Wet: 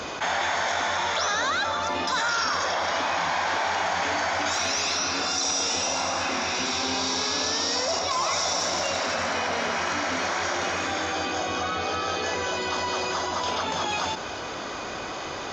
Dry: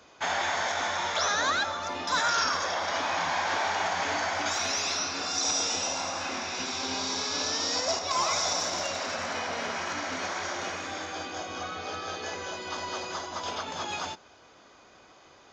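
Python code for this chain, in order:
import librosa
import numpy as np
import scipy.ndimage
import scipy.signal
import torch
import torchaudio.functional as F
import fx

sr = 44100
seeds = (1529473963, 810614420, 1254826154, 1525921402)

y = fx.high_shelf(x, sr, hz=8700.0, db=-5.0)
y = fx.env_flatten(y, sr, amount_pct=70)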